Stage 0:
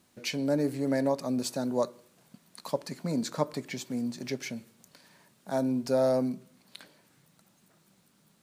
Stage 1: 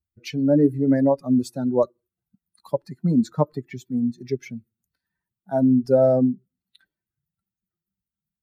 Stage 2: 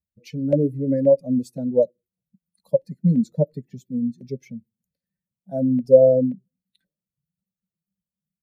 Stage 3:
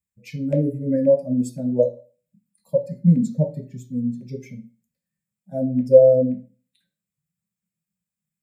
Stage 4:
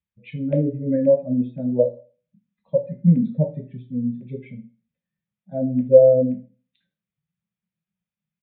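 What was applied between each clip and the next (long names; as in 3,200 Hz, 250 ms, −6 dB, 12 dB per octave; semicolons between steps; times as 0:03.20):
spectral dynamics exaggerated over time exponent 2; tilt shelving filter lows +8.5 dB, about 1,100 Hz; level +6.5 dB
auto-filter notch saw down 1.9 Hz 530–2,400 Hz; drawn EQ curve 110 Hz 0 dB, 180 Hz +11 dB, 370 Hz −5 dB, 530 Hz +14 dB, 770 Hz −6 dB, 1,200 Hz −18 dB, 2,100 Hz −4 dB, 3,400 Hz −5 dB, 7,200 Hz −1 dB; level −5.5 dB
convolution reverb RT60 0.40 s, pre-delay 3 ms, DRR 2.5 dB; level +1 dB
downsampling to 8,000 Hz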